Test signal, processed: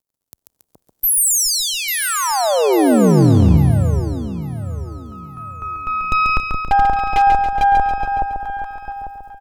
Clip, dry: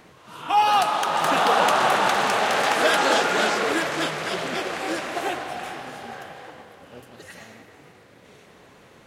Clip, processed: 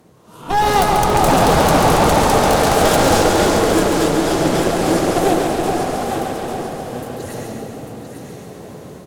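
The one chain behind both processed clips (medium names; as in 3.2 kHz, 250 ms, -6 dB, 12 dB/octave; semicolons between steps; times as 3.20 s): high-pass 55 Hz 24 dB/octave; Chebyshev shaper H 5 -18 dB, 6 -11 dB, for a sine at -6 dBFS; crackle 57 per s -54 dBFS; peaking EQ 2.2 kHz -15 dB 2.6 oct; echo whose repeats swap between lows and highs 423 ms, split 880 Hz, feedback 53%, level -2.5 dB; level rider gain up to 12 dB; wavefolder -6 dBFS; feedback delay 139 ms, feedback 56%, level -5.5 dB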